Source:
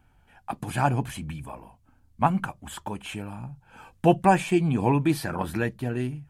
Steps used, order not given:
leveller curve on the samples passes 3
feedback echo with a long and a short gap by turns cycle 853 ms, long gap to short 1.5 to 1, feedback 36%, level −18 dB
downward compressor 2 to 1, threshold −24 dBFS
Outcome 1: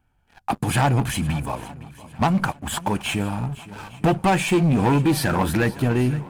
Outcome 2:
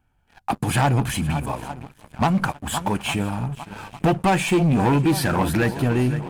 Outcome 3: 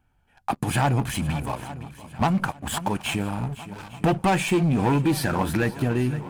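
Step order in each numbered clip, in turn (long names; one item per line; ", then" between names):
downward compressor, then leveller curve on the samples, then feedback echo with a long and a short gap by turns
feedback echo with a long and a short gap by turns, then downward compressor, then leveller curve on the samples
leveller curve on the samples, then feedback echo with a long and a short gap by turns, then downward compressor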